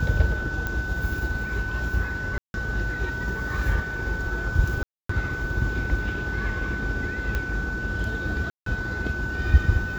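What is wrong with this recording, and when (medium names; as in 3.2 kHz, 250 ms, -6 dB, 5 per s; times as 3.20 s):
whine 1.5 kHz -30 dBFS
0.67 s: pop -14 dBFS
2.38–2.54 s: dropout 161 ms
4.83–5.09 s: dropout 264 ms
7.35 s: pop -14 dBFS
8.50–8.66 s: dropout 163 ms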